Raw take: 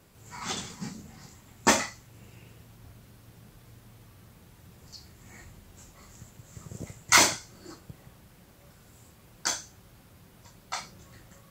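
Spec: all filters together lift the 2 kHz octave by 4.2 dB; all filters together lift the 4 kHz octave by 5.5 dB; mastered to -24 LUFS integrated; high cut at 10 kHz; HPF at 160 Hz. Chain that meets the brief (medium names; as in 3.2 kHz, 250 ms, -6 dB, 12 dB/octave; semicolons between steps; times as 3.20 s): high-pass 160 Hz; low-pass 10 kHz; peaking EQ 2 kHz +3.5 dB; peaking EQ 4 kHz +6 dB; trim -1 dB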